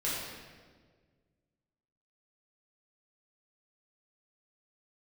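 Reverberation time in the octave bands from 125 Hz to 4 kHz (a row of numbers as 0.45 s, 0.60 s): 2.3 s, 2.0 s, 1.8 s, 1.4 s, 1.3 s, 1.2 s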